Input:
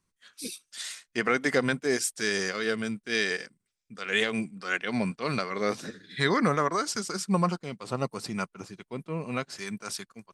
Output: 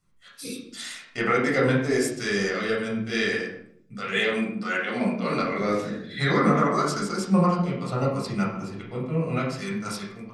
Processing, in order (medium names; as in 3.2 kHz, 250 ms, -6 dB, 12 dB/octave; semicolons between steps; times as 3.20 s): 4.16–5.40 s: high-pass 180 Hz 24 dB/octave; in parallel at -2 dB: compression, threshold -39 dBFS, peak gain reduction 18.5 dB; on the sum: reverberation RT60 0.65 s, pre-delay 11 ms, DRR -4 dB; trim -6 dB